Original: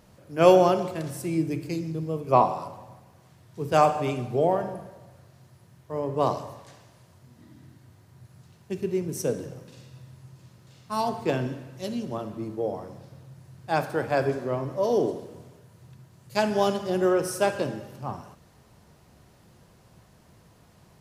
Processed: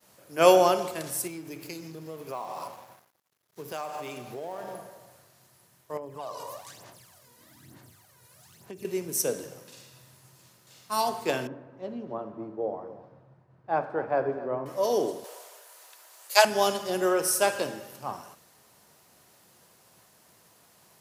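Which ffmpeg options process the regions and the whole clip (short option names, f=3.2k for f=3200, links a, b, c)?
-filter_complex "[0:a]asettb=1/sr,asplit=3[a][b][c];[a]atrim=end=1.274[d];[b]atrim=start=1.27:end=4.78,asetpts=PTS-STARTPTS,afade=t=in:d=0.004:c=qsin,afade=t=out:st=3.506:d=0.004:c=qsin,equalizer=f=8.5k:w=5.5:g=-9,acompressor=threshold=-30dB:ratio=10:attack=3.2:release=140:knee=1:detection=peak,aeval=exprs='sgn(val(0))*max(abs(val(0))-0.002,0)':c=same[e];[c]atrim=start=4.776[f];[d][e]acrossfade=d=0.004:c1=hsin:c2=qsin[g];[g][f]acrossfade=d=0.004:c1=qsin:c2=hsin,asettb=1/sr,asplit=3[h][i][j];[h]atrim=end=5.974[k];[i]atrim=start=5.97:end=8.85,asetpts=PTS-STARTPTS,afade=t=in:d=0.004:c=qsin,afade=t=out:st=2.876:d=0.004:c=qsin,aphaser=in_gain=1:out_gain=1:delay=2.1:decay=0.65:speed=1.1:type=sinusoidal,acompressor=threshold=-33dB:ratio=8:attack=3.2:release=140:knee=1:detection=peak[l];[j]atrim=start=8.846[m];[k][l]acrossfade=d=0.004:c1=hsin:c2=qsin[n];[n][m]acrossfade=d=0.004:c1=qsin:c2=hsin,asettb=1/sr,asplit=3[o][p][q];[o]atrim=end=11.474[r];[p]atrim=start=11.47:end=14.66,asetpts=PTS-STARTPTS,afade=t=in:d=0.004:c=qsin,afade=t=out:st=3.186:d=0.004:c=qsin,lowpass=1.1k,aecho=1:1:256:0.141,atrim=end_sample=140679[s];[q]atrim=start=14.656[t];[r][s]acrossfade=d=0.004:c1=hsin:c2=qsin[u];[u][t]acrossfade=d=0.004:c1=qsin:c2=hsin,asettb=1/sr,asplit=3[v][w][x];[v]atrim=end=15.244[y];[w]atrim=start=15.24:end=16.45,asetpts=PTS-STARTPTS,afade=t=in:d=0.004:c=qsin,afade=t=out:st=1.206:d=0.004:c=qsin,highpass=f=540:w=0.5412,highpass=f=540:w=1.3066,acontrast=75[z];[x]atrim=start=16.446[aa];[y][z]acrossfade=d=0.004:c1=hsin:c2=qsin[ab];[ab][aa]acrossfade=d=0.004:c1=qsin:c2=hsin,highpass=f=600:p=1,highshelf=f=7.7k:g=12,agate=range=-33dB:threshold=-57dB:ratio=3:detection=peak,volume=2dB"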